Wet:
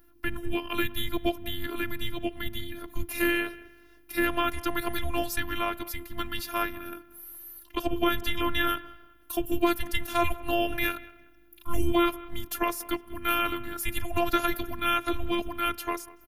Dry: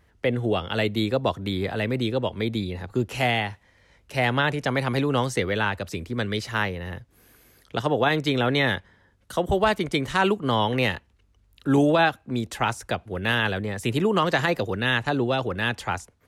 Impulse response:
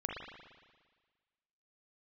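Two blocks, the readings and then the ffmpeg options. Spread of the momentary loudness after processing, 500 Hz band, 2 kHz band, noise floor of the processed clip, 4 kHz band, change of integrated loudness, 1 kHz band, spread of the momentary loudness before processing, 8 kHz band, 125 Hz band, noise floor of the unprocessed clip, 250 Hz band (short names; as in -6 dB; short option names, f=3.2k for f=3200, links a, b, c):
11 LU, -7.5 dB, -6.0 dB, -56 dBFS, -4.5 dB, -5.0 dB, -4.0 dB, 9 LU, +1.5 dB, -13.5 dB, -62 dBFS, -5.0 dB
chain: -filter_complex "[0:a]afreqshift=-330,asplit=2[a][b];[1:a]atrim=start_sample=2205[c];[b][c]afir=irnorm=-1:irlink=0,volume=-22.5dB[d];[a][d]amix=inputs=2:normalize=0,aexciter=amount=11.5:drive=6.8:freq=11k,asplit=2[e][f];[f]adelay=191,lowpass=f=2.3k:p=1,volume=-19.5dB,asplit=2[g][h];[h]adelay=191,lowpass=f=2.3k:p=1,volume=0.31,asplit=2[i][j];[j]adelay=191,lowpass=f=2.3k:p=1,volume=0.31[k];[e][g][i][k]amix=inputs=4:normalize=0,aeval=exprs='val(0)+0.00178*(sin(2*PI*50*n/s)+sin(2*PI*2*50*n/s)/2+sin(2*PI*3*50*n/s)/3+sin(2*PI*4*50*n/s)/4+sin(2*PI*5*50*n/s)/5)':c=same,afftfilt=real='hypot(re,im)*cos(PI*b)':imag='0':win_size=512:overlap=0.75"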